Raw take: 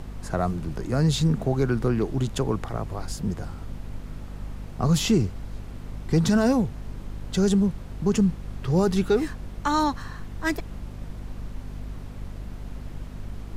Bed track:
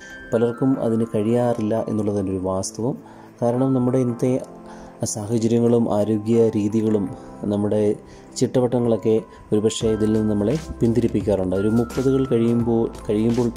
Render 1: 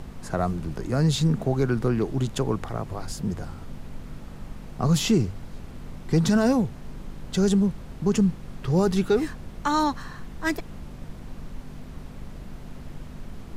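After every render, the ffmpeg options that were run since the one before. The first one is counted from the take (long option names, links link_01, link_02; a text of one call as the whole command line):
ffmpeg -i in.wav -af "bandreject=frequency=50:width_type=h:width=4,bandreject=frequency=100:width_type=h:width=4" out.wav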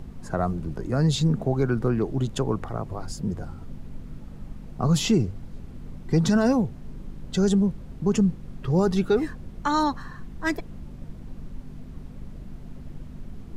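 ffmpeg -i in.wav -af "afftdn=noise_reduction=8:noise_floor=-41" out.wav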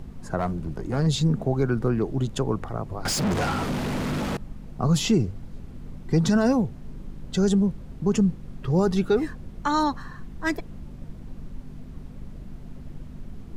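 ffmpeg -i in.wav -filter_complex "[0:a]asettb=1/sr,asplit=3[link_01][link_02][link_03];[link_01]atrim=end=0.394[link_04];[link_02]atrim=start=0.39:end=1.07,asetpts=PTS-STARTPTS,afade=type=in:duration=0.004:curve=qsin,afade=type=out:start_time=0.676:duration=0.004:curve=qsin,aeval=exprs='clip(val(0),-1,0.0708)':channel_layout=same[link_05];[link_03]atrim=start=1.066[link_06];[link_04][link_05]acrossfade=duration=0.004:curve1=hsin:curve2=qsin[link_07];[link_07][link_06]acrossfade=duration=0.004:curve1=qsin:curve2=hsin,asettb=1/sr,asplit=3[link_08][link_09][link_10];[link_08]atrim=end=3.054[link_11];[link_09]atrim=start=3.05:end=4.37,asetpts=PTS-STARTPTS,afade=type=in:duration=0.004:curve=qsin,afade=type=out:start_time=1.316:duration=0.004:curve=qsin,asplit=2[link_12][link_13];[link_13]highpass=frequency=720:poles=1,volume=37dB,asoftclip=type=tanh:threshold=-17dB[link_14];[link_12][link_14]amix=inputs=2:normalize=0,lowpass=frequency=6400:poles=1,volume=-6dB[link_15];[link_10]atrim=start=4.366[link_16];[link_11][link_15]acrossfade=duration=0.004:curve1=hsin:curve2=qsin[link_17];[link_17][link_16]acrossfade=duration=0.004:curve1=qsin:curve2=hsin" out.wav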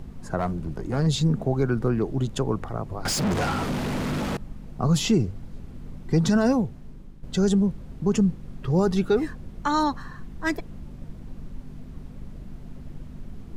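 ffmpeg -i in.wav -filter_complex "[0:a]asplit=2[link_01][link_02];[link_01]atrim=end=7.23,asetpts=PTS-STARTPTS,afade=type=out:start_time=6.51:duration=0.72:silence=0.316228[link_03];[link_02]atrim=start=7.23,asetpts=PTS-STARTPTS,afade=type=in:duration=0.004:curve=hsin:silence=0.316228[link_04];[link_03][link_04]concat=n=2:v=0:a=1" out.wav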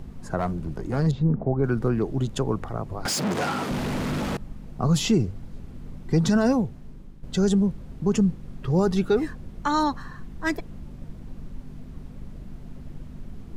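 ffmpeg -i in.wav -filter_complex "[0:a]asettb=1/sr,asplit=3[link_01][link_02][link_03];[link_01]atrim=end=1.114[link_04];[link_02]atrim=start=1.11:end=1.64,asetpts=PTS-STARTPTS,afade=type=in:duration=0.004:curve=qsin,afade=type=out:start_time=0.526:duration=0.004:curve=qsin,lowpass=1200[link_05];[link_03]atrim=start=1.636[link_06];[link_04][link_05]acrossfade=duration=0.004:curve1=hsin:curve2=qsin[link_07];[link_07][link_06]acrossfade=duration=0.004:curve1=qsin:curve2=hsin,asettb=1/sr,asplit=3[link_08][link_09][link_10];[link_08]atrim=end=3.064[link_11];[link_09]atrim=start=3.06:end=3.71,asetpts=PTS-STARTPTS,afade=type=in:duration=0.004:curve=qsin,afade=type=out:start_time=0.646:duration=0.004:curve=qsin,highpass=170[link_12];[link_10]atrim=start=3.706[link_13];[link_11][link_12]acrossfade=duration=0.004:curve1=hsin:curve2=qsin[link_14];[link_14][link_13]acrossfade=duration=0.004:curve1=qsin:curve2=hsin" out.wav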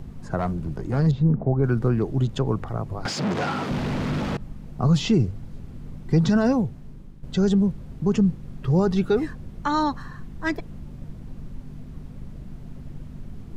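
ffmpeg -i in.wav -filter_complex "[0:a]acrossover=split=6100[link_01][link_02];[link_02]acompressor=threshold=-59dB:ratio=4:attack=1:release=60[link_03];[link_01][link_03]amix=inputs=2:normalize=0,equalizer=frequency=120:width_type=o:width=0.94:gain=4.5" out.wav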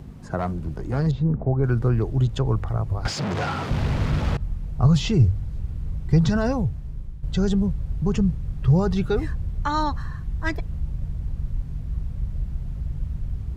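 ffmpeg -i in.wav -af "highpass=44,asubboost=boost=11.5:cutoff=72" out.wav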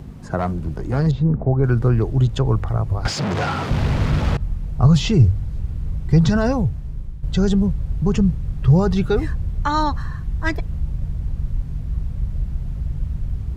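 ffmpeg -i in.wav -af "volume=4dB,alimiter=limit=-3dB:level=0:latency=1" out.wav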